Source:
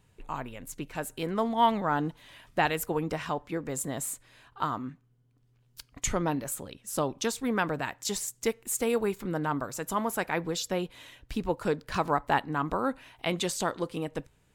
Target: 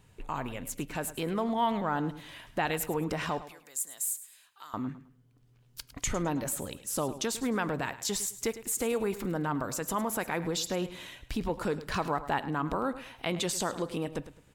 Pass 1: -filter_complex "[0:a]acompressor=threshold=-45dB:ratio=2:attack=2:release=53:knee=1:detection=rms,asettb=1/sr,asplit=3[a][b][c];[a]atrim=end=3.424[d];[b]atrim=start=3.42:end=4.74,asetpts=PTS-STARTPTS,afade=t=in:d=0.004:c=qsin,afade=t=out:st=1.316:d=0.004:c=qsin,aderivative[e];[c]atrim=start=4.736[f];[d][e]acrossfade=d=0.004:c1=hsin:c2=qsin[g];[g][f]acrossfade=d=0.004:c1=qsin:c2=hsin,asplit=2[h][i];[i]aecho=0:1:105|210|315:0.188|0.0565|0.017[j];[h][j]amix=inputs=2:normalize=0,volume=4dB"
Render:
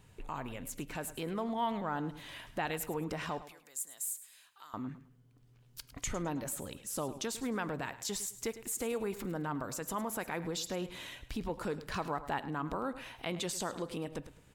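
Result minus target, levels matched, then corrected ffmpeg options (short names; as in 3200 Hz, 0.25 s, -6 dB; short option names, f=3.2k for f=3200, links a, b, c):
compressor: peak gain reduction +5.5 dB
-filter_complex "[0:a]acompressor=threshold=-34dB:ratio=2:attack=2:release=53:knee=1:detection=rms,asettb=1/sr,asplit=3[a][b][c];[a]atrim=end=3.424[d];[b]atrim=start=3.42:end=4.74,asetpts=PTS-STARTPTS,afade=t=in:d=0.004:c=qsin,afade=t=out:st=1.316:d=0.004:c=qsin,aderivative[e];[c]atrim=start=4.736[f];[d][e]acrossfade=d=0.004:c1=hsin:c2=qsin[g];[g][f]acrossfade=d=0.004:c1=qsin:c2=hsin,asplit=2[h][i];[i]aecho=0:1:105|210|315:0.188|0.0565|0.017[j];[h][j]amix=inputs=2:normalize=0,volume=4dB"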